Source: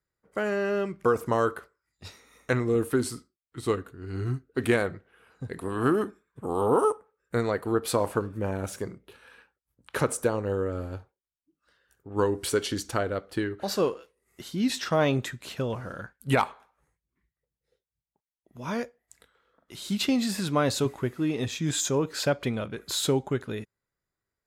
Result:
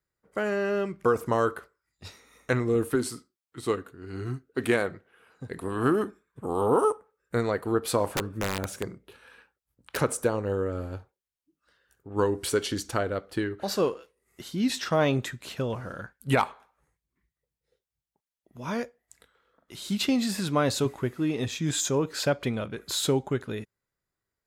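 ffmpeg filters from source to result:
-filter_complex "[0:a]asettb=1/sr,asplit=3[a][b][c];[a]atrim=end=2.954[d];[b]atrim=start=2.95:end=5.51,asetpts=PTS-STARTPTS,afade=t=in:d=0.004:c=qsin,afade=t=out:st=2.556:d=0.004:c=qsin,highpass=f=160:p=1[e];[c]atrim=start=5.506[f];[d][e]acrossfade=d=0.004:c1=hsin:c2=qsin[g];[g][f]acrossfade=d=0.004:c1=qsin:c2=hsin,asplit=3[h][i][j];[h]afade=t=out:st=8.06:d=0.02[k];[i]aeval=exprs='(mod(11.2*val(0)+1,2)-1)/11.2':c=same,afade=t=in:st=8.06:d=0.02,afade=t=out:st=9.96:d=0.02[l];[j]afade=t=in:st=9.96:d=0.02[m];[k][l][m]amix=inputs=3:normalize=0"

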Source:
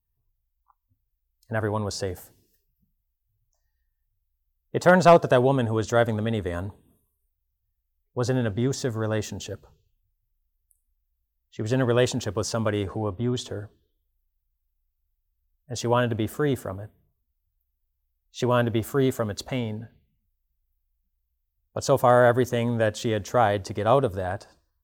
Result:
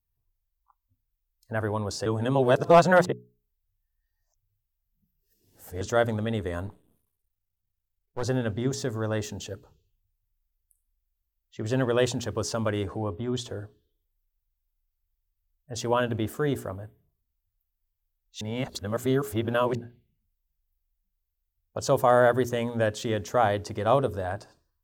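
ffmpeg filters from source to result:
-filter_complex "[0:a]asettb=1/sr,asplit=3[a][b][c];[a]atrim=end=6.674[d];[b]atrim=start=6.67:end=8.23,asetpts=PTS-STARTPTS,afade=t=in:d=0.004:c=qsin,afade=t=out:st=1.556:d=0.004:c=qsin,aeval=exprs='max(val(0),0)':c=same[e];[c]atrim=start=8.226[f];[d][e]acrossfade=d=0.004:c1=hsin:c2=qsin[g];[g][f]acrossfade=d=0.004:c1=qsin:c2=hsin,asplit=5[h][i][j][k][l];[h]atrim=end=2.062[m];[i]atrim=start=2.058:end=5.812,asetpts=PTS-STARTPTS,areverse[n];[j]atrim=start=5.808:end=18.412[o];[k]atrim=start=18.408:end=19.752,asetpts=PTS-STARTPTS,areverse[p];[l]atrim=start=19.748[q];[m][n]acrossfade=d=0.004:c1=hsin:c2=hsin[r];[r][o]acrossfade=d=0.004:c1=hsin:c2=hsin[s];[s][p]acrossfade=d=0.004:c1=hsin:c2=hsin[t];[t][q]acrossfade=d=0.004:c1=hsin:c2=hsin,bandreject=f=60:t=h:w=6,bandreject=f=120:t=h:w=6,bandreject=f=180:t=h:w=6,bandreject=f=240:t=h:w=6,bandreject=f=300:t=h:w=6,bandreject=f=360:t=h:w=6,bandreject=f=420:t=h:w=6,volume=-2dB"

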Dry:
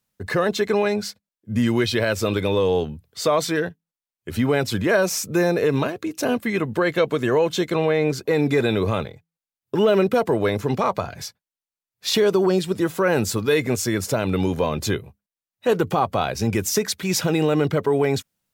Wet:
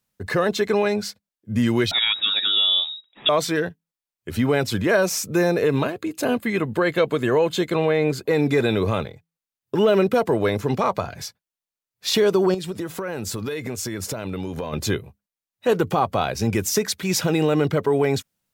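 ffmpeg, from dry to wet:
-filter_complex "[0:a]asettb=1/sr,asplit=3[a][b][c];[a]atrim=end=1.914[d];[b]atrim=start=1.91:end=3.29,asetpts=PTS-STARTPTS,afade=t=in:d=0.004:c=qsin,afade=t=out:st=1.376:d=0.004:c=qsin,lowpass=f=3.3k:t=q:w=0.5098,lowpass=f=3.3k:t=q:w=0.6013,lowpass=f=3.3k:t=q:w=0.9,lowpass=f=3.3k:t=q:w=2.563,afreqshift=-3900[e];[c]atrim=start=3.286[f];[d][e]acrossfade=d=0.004:c1=hsin:c2=qsin[g];[g][f]acrossfade=d=0.004:c1=qsin:c2=hsin,asettb=1/sr,asplit=3[h][i][j];[h]atrim=end=5.634[k];[i]atrim=start=5.63:end=8.3,asetpts=PTS-STARTPTS,afade=t=in:d=0.004:c=qsin,afade=t=out:st=2.666:d=0.004:c=qsin,bandreject=f=5.7k:w=5.8[l];[j]atrim=start=8.296[m];[k][l]acrossfade=d=0.004:c1=hsin:c2=qsin[n];[n][m]acrossfade=d=0.004:c1=qsin:c2=hsin,asettb=1/sr,asplit=3[o][p][q];[o]atrim=end=12.544[r];[p]atrim=start=12.54:end=14.73,asetpts=PTS-STARTPTS,afade=t=in:d=0.004:c=qsin,afade=t=out:st=2.186:d=0.004:c=qsin,acompressor=threshold=-24dB:ratio=12:attack=3.2:release=140:knee=1:detection=peak[s];[q]atrim=start=14.726[t];[r][s]acrossfade=d=0.004:c1=hsin:c2=qsin[u];[u][t]acrossfade=d=0.004:c1=qsin:c2=hsin"

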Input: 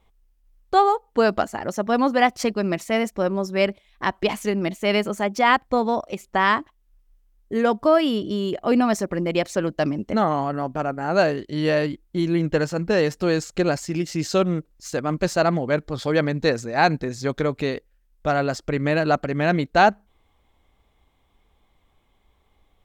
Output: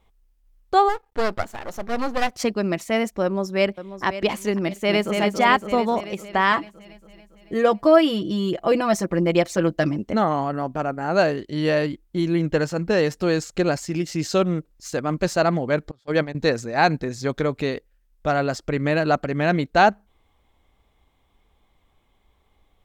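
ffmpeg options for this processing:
-filter_complex "[0:a]asplit=3[a][b][c];[a]afade=t=out:st=0.88:d=0.02[d];[b]aeval=exprs='max(val(0),0)':c=same,afade=t=in:st=0.88:d=0.02,afade=t=out:st=2.32:d=0.02[e];[c]afade=t=in:st=2.32:d=0.02[f];[d][e][f]amix=inputs=3:normalize=0,asplit=2[g][h];[h]afade=t=in:st=3.23:d=0.01,afade=t=out:st=4.04:d=0.01,aecho=0:1:540|1080|1620|2160:0.237137|0.0948549|0.037942|0.0151768[i];[g][i]amix=inputs=2:normalize=0,asplit=2[j][k];[k]afade=t=in:st=4.6:d=0.01,afade=t=out:st=5.16:d=0.01,aecho=0:1:280|560|840|1120|1400|1680|1960|2240|2520|2800:0.595662|0.38718|0.251667|0.163584|0.106329|0.0691141|0.0449242|0.0292007|0.0189805|0.0123373[l];[j][l]amix=inputs=2:normalize=0,asettb=1/sr,asplit=3[m][n][o];[m]atrim=end=6.514[p];[n]atrim=start=6.51:end=9.97,asetpts=PTS-STARTPTS,afade=t=in:d=0.004:c=qsin,afade=t=out:st=3.456:d=0.004:c=qsin,aecho=1:1:6:0.65,atrim=end_sample=152586[q];[o]atrim=start=9.966[r];[p][q]acrossfade=d=0.004:c1=hsin:c2=qsin[s];[s][r]acrossfade=d=0.004:c1=qsin:c2=hsin,asettb=1/sr,asplit=3[t][u][v];[t]atrim=end=15.914[w];[u]atrim=start=15.91:end=16.35,asetpts=PTS-STARTPTS,afade=t=in:d=0.004:c=qsin,afade=t=out:st=0.436:d=0.004:c=qsin,agate=range=-30dB:threshold=-22dB:ratio=16:release=100:detection=peak[x];[v]atrim=start=16.346[y];[w][x]acrossfade=d=0.004:c1=hsin:c2=qsin[z];[z][y]acrossfade=d=0.004:c1=qsin:c2=hsin"

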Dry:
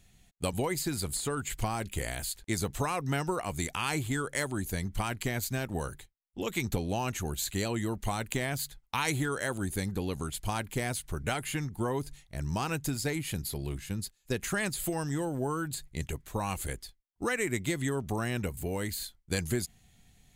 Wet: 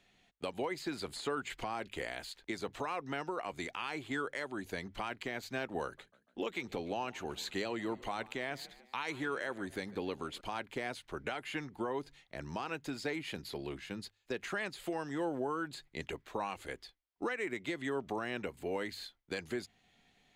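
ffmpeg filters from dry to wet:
-filter_complex "[0:a]asettb=1/sr,asplit=3[a][b][c];[a]atrim=end=5.834[d];[b]atrim=start=5.83:end=10.41,asetpts=PTS-STARTPTS,afade=t=in:d=0.004:c=qsin,afade=t=out:st=4.576:d=0.004:c=qsin,asplit=4[e][f][g][h];[f]adelay=146,afreqshift=40,volume=-22dB[i];[g]adelay=292,afreqshift=80,volume=-28.4dB[j];[h]adelay=438,afreqshift=120,volume=-34.8dB[k];[e][i][j][k]amix=inputs=4:normalize=0,atrim=end_sample=201978[l];[c]atrim=start=10.406[m];[d][l]acrossfade=d=0.004:c1=hsin:c2=qsin[n];[n][m]acrossfade=d=0.004:c1=qsin:c2=hsin,acrossover=split=250 4600:gain=0.126 1 0.0891[o][p][q];[o][p][q]amix=inputs=3:normalize=0,bandreject=f=50:t=h:w=6,bandreject=f=100:t=h:w=6,alimiter=level_in=3dB:limit=-24dB:level=0:latency=1:release=376,volume=-3dB,volume=1dB"

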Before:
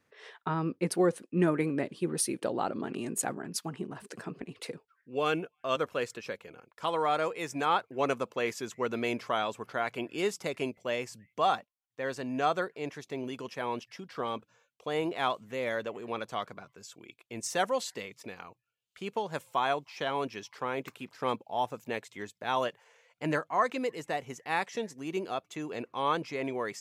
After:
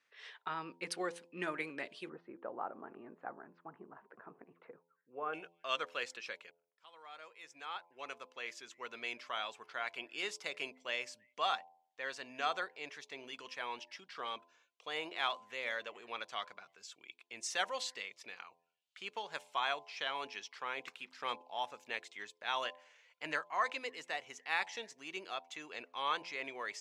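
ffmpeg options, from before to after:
-filter_complex "[0:a]asplit=3[a][b][c];[a]afade=t=out:st=2.08:d=0.02[d];[b]lowpass=f=1.3k:w=0.5412,lowpass=f=1.3k:w=1.3066,afade=t=in:st=2.08:d=0.02,afade=t=out:st=5.33:d=0.02[e];[c]afade=t=in:st=5.33:d=0.02[f];[d][e][f]amix=inputs=3:normalize=0,asplit=2[g][h];[g]atrim=end=6.51,asetpts=PTS-STARTPTS,afade=t=out:st=6.506:d=0.004:c=hsin[i];[h]atrim=start=6.51,asetpts=PTS-STARTPTS,afade=t=in:d=4.22[j];[i][j]concat=n=2:v=0:a=1,lowpass=3.2k,aderivative,bandreject=f=85.48:t=h:w=4,bandreject=f=170.96:t=h:w=4,bandreject=f=256.44:t=h:w=4,bandreject=f=341.92:t=h:w=4,bandreject=f=427.4:t=h:w=4,bandreject=f=512.88:t=h:w=4,bandreject=f=598.36:t=h:w=4,bandreject=f=683.84:t=h:w=4,bandreject=f=769.32:t=h:w=4,bandreject=f=854.8:t=h:w=4,bandreject=f=940.28:t=h:w=4,bandreject=f=1.02576k:t=h:w=4,volume=10.5dB"

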